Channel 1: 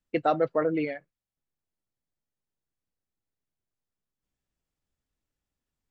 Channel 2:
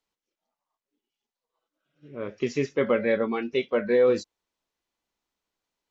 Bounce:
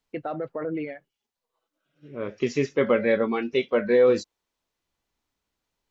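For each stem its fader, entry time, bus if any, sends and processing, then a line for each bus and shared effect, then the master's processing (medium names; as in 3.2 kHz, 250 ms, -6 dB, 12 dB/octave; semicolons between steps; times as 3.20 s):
0.0 dB, 0.00 s, no send, low-pass 3.1 kHz; peak limiter -22 dBFS, peak gain reduction 10 dB; auto duck -17 dB, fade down 1.30 s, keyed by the second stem
+2.0 dB, 0.00 s, no send, none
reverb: none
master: none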